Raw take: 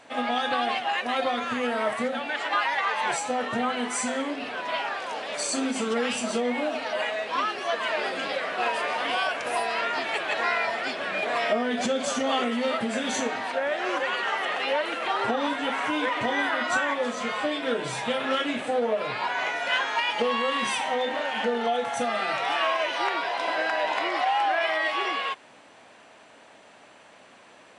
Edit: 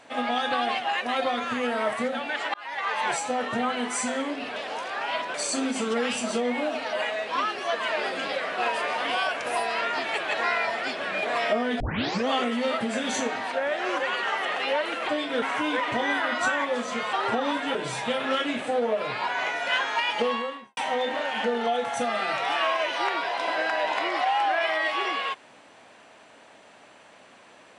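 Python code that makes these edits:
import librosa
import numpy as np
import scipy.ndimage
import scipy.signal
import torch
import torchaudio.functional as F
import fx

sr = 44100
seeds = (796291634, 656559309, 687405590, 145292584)

y = fx.studio_fade_out(x, sr, start_s=20.23, length_s=0.54)
y = fx.edit(y, sr, fx.fade_in_span(start_s=2.54, length_s=0.42),
    fx.reverse_span(start_s=4.56, length_s=0.78),
    fx.tape_start(start_s=11.8, length_s=0.48),
    fx.swap(start_s=15.09, length_s=0.62, other_s=17.42, other_length_s=0.33), tone=tone)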